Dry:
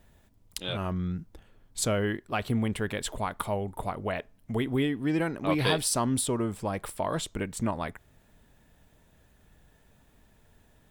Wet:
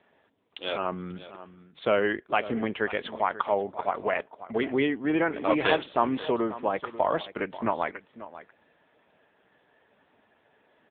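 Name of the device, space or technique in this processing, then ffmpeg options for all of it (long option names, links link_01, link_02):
satellite phone: -af "highpass=370,lowpass=3300,aecho=1:1:539:0.178,volume=7dB" -ar 8000 -c:a libopencore_amrnb -b:a 6700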